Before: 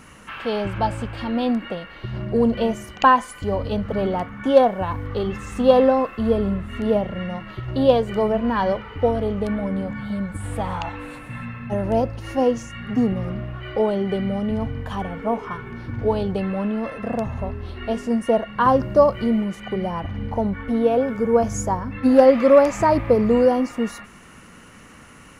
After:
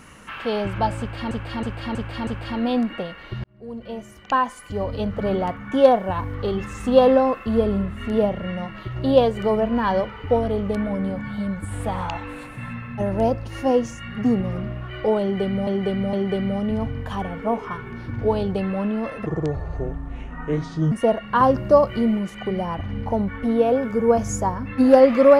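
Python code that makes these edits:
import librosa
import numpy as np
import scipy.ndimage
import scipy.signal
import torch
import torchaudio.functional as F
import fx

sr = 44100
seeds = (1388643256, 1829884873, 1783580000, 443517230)

y = fx.edit(x, sr, fx.repeat(start_s=0.99, length_s=0.32, count=5),
    fx.fade_in_span(start_s=2.16, length_s=1.84),
    fx.repeat(start_s=13.93, length_s=0.46, count=3),
    fx.speed_span(start_s=17.06, length_s=1.11, speed=0.67), tone=tone)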